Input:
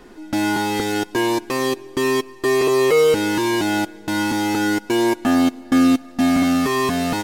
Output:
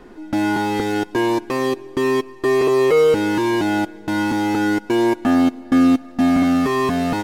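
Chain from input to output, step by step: treble shelf 3 kHz -9.5 dB; in parallel at -12 dB: saturation -18 dBFS, distortion -12 dB

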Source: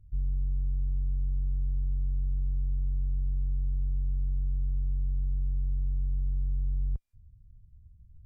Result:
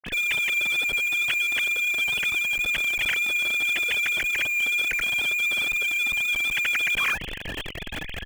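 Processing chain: formants replaced by sine waves; bass shelf 210 Hz -8.5 dB; in parallel at -5.5 dB: Schmitt trigger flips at -31 dBFS

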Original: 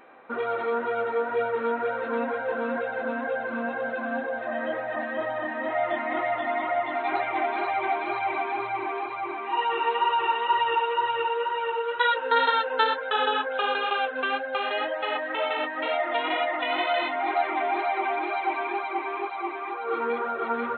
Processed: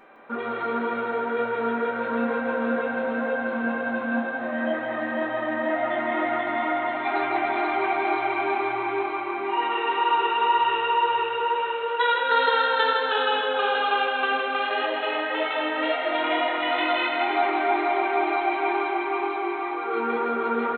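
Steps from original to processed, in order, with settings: on a send: bouncing-ball echo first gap 160 ms, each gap 0.85×, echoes 5; on the sum: simulated room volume 240 m³, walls furnished, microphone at 1.2 m; trim -1 dB

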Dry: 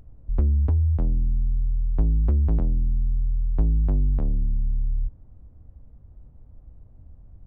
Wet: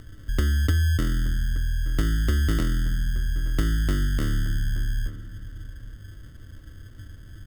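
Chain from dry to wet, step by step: graphic EQ with 31 bands 100 Hz +9 dB, 315 Hz +9 dB, 800 Hz -11 dB; sample-and-hold 27×; compression 2:1, threshold -26 dBFS, peak gain reduction 7 dB; bass shelf 110 Hz -6.5 dB; band-stop 970 Hz, Q 11; echo from a far wall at 150 m, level -15 dB; trim +7 dB

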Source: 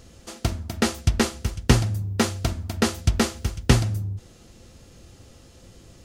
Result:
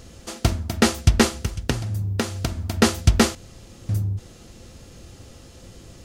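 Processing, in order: 1.26–2.77 s: compression 8:1, threshold -25 dBFS, peak gain reduction 15 dB; 3.35–3.89 s: room tone; trim +4.5 dB

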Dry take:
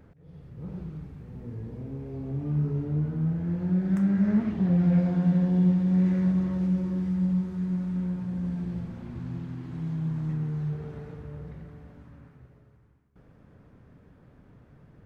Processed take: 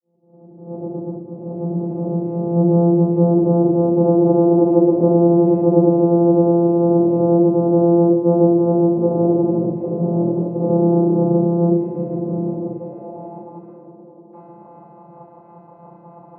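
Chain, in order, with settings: fade-in on the opening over 2.79 s; high-pass 140 Hz 12 dB/octave; frequency shift +140 Hz; fifteen-band graphic EQ 250 Hz +11 dB, 630 Hz +6 dB, 1.6 kHz -11 dB; in parallel at +1.5 dB: compression, threshold -33 dBFS, peak gain reduction 17.5 dB; on the sum: peak limiter -16 dBFS, peak gain reduction 7.5 dB; vocoder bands 4, saw 186 Hz; band-pass sweep 410 Hz -> 1.1 kHz, 11.64–12.56 s; reverb removal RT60 0.87 s; on a send: feedback echo behind a band-pass 284 ms, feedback 76%, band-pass 520 Hz, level -11 dB; on the sum: simulated room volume 290 m³, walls furnished, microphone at 6.5 m; speed mistake 48 kHz file played as 44.1 kHz; trim +7.5 dB

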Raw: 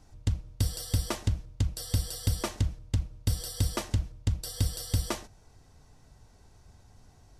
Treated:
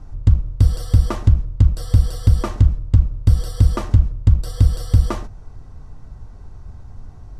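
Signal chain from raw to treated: peaking EQ 1.2 kHz +7.5 dB 0.59 oct; in parallel at +0.5 dB: peak limiter -27 dBFS, peak gain reduction 11 dB; on the sum: tilt EQ -3 dB/octave; trim +1 dB

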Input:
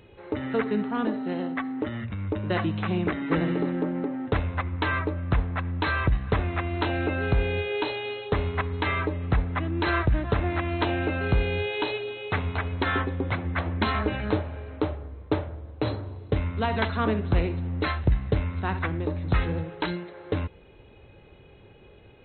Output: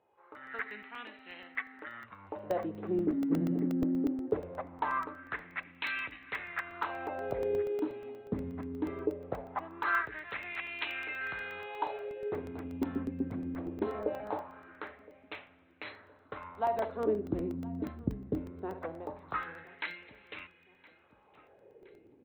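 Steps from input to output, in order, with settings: wah-wah 0.21 Hz 230–2500 Hz, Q 3.4; on a send: feedback delay 1017 ms, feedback 46%, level -22.5 dB; on the sum: level rider gain up to 8.5 dB; crackling interface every 0.12 s, samples 64, zero, from 0.35 s; trim -7 dB

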